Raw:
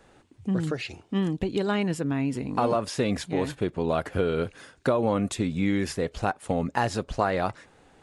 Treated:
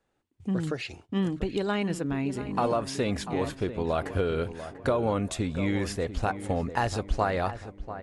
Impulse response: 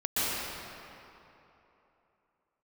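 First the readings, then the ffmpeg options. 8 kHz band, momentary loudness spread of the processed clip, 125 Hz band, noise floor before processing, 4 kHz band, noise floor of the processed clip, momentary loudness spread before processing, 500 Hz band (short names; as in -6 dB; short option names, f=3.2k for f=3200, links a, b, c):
-1.5 dB, 6 LU, -1.0 dB, -58 dBFS, -1.5 dB, -67 dBFS, 5 LU, -2.0 dB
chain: -filter_complex "[0:a]agate=range=-18dB:threshold=-49dB:ratio=16:detection=peak,asubboost=boost=4.5:cutoff=73,asplit=2[a][b];[b]adelay=692,lowpass=f=1.7k:p=1,volume=-11.5dB,asplit=2[c][d];[d]adelay=692,lowpass=f=1.7k:p=1,volume=0.45,asplit=2[e][f];[f]adelay=692,lowpass=f=1.7k:p=1,volume=0.45,asplit=2[g][h];[h]adelay=692,lowpass=f=1.7k:p=1,volume=0.45,asplit=2[i][j];[j]adelay=692,lowpass=f=1.7k:p=1,volume=0.45[k];[c][e][g][i][k]amix=inputs=5:normalize=0[l];[a][l]amix=inputs=2:normalize=0,volume=-1.5dB"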